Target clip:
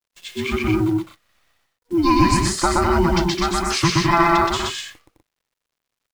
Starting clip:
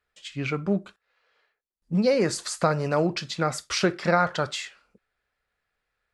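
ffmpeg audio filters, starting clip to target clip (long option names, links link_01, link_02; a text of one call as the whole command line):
ffmpeg -i in.wav -filter_complex "[0:a]afftfilt=real='real(if(between(b,1,1008),(2*floor((b-1)/24)+1)*24-b,b),0)':imag='imag(if(between(b,1,1008),(2*floor((b-1)/24)+1)*24-b,b),0)*if(between(b,1,1008),-1,1)':win_size=2048:overlap=0.75,bandreject=frequency=940:width=12,acrusher=bits=9:dc=4:mix=0:aa=0.000001,asplit=2[link_01][link_02];[link_02]aecho=0:1:122.4|209.9|247.8:0.891|0.562|0.501[link_03];[link_01][link_03]amix=inputs=2:normalize=0,volume=4dB" out.wav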